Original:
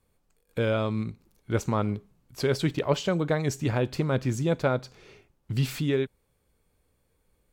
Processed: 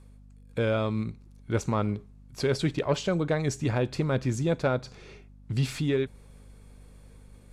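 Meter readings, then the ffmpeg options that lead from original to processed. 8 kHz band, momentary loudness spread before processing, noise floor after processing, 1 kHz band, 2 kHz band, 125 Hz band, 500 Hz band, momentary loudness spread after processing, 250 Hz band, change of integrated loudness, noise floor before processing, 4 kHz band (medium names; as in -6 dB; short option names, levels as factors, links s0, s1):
0.0 dB, 7 LU, -52 dBFS, -1.0 dB, -1.0 dB, -0.5 dB, -1.0 dB, 10 LU, -0.5 dB, -0.5 dB, -72 dBFS, -1.0 dB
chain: -af "lowpass=f=11000:w=0.5412,lowpass=f=11000:w=1.3066,bandreject=f=3000:w=24,areverse,acompressor=mode=upward:threshold=0.00708:ratio=2.5,areverse,aeval=exprs='val(0)+0.00316*(sin(2*PI*50*n/s)+sin(2*PI*2*50*n/s)/2+sin(2*PI*3*50*n/s)/3+sin(2*PI*4*50*n/s)/4+sin(2*PI*5*50*n/s)/5)':c=same,asoftclip=type=tanh:threshold=0.211"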